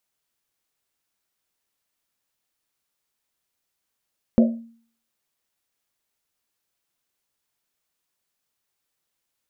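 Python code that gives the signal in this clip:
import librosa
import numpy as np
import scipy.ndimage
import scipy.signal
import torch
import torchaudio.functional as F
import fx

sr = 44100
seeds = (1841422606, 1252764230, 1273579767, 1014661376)

y = fx.risset_drum(sr, seeds[0], length_s=1.1, hz=230.0, decay_s=0.51, noise_hz=590.0, noise_width_hz=130.0, noise_pct=25)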